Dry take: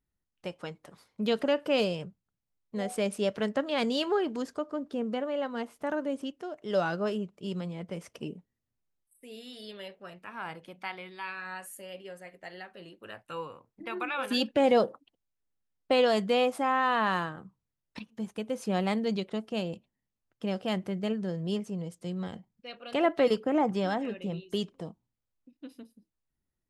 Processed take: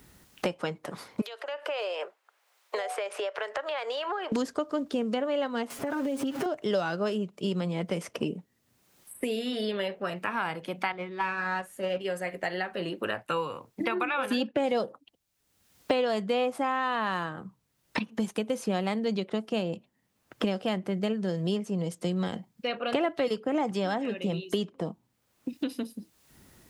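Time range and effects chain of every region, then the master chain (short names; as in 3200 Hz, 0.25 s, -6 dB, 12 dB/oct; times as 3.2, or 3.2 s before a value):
1.21–4.32 Bessel high-pass 820 Hz, order 8 + high shelf 4200 Hz -9 dB + compressor 5:1, threshold -50 dBFS
5.7–6.46 zero-crossing step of -44.5 dBFS + comb 7.4 ms, depth 95% + compressor 12:1, threshold -36 dBFS
10.92–12.01 G.711 law mismatch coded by mu + LPF 1400 Hz 6 dB/oct + gate -42 dBFS, range -8 dB
whole clip: HPF 120 Hz 6 dB/oct; three-band squash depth 100%; gain +3 dB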